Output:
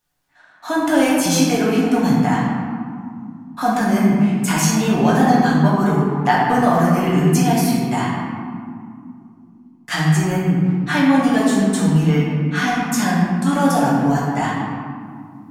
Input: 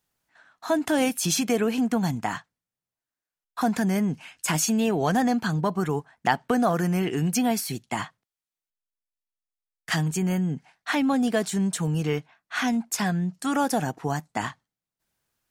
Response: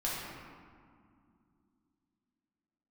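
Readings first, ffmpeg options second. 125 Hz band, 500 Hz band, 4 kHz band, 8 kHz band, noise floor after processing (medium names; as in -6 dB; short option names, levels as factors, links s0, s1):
+10.5 dB, +7.0 dB, +5.5 dB, +4.5 dB, -48 dBFS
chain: -filter_complex "[1:a]atrim=start_sample=2205[s0];[0:a][s0]afir=irnorm=-1:irlink=0,volume=1.26"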